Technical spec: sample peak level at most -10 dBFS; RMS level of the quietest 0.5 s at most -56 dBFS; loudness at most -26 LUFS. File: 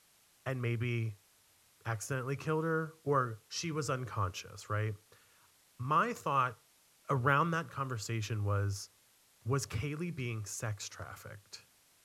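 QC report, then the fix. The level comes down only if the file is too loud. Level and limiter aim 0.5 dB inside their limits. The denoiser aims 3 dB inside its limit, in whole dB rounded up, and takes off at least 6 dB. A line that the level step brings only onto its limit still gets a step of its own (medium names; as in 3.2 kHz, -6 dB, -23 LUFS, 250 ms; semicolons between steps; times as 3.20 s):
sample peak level -13.0 dBFS: pass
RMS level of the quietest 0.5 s -67 dBFS: pass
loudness -35.5 LUFS: pass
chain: none needed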